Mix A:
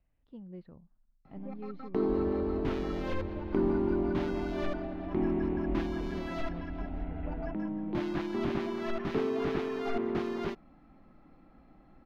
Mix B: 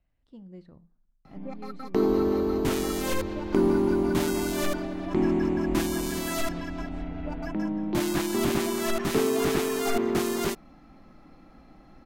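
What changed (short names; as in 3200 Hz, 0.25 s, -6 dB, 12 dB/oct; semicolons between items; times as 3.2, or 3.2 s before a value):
speech: send on; first sound +5.5 dB; master: remove air absorption 280 m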